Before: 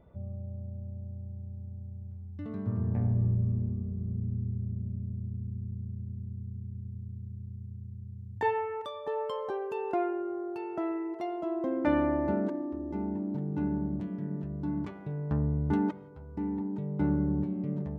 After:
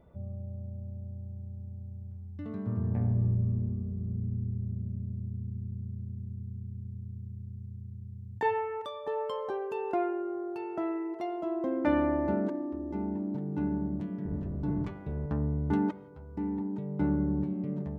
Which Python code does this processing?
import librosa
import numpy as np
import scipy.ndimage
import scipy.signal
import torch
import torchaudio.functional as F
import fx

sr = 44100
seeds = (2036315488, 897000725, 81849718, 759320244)

y = fx.octave_divider(x, sr, octaves=1, level_db=-1.0, at=(14.25, 15.26))
y = fx.hum_notches(y, sr, base_hz=50, count=3)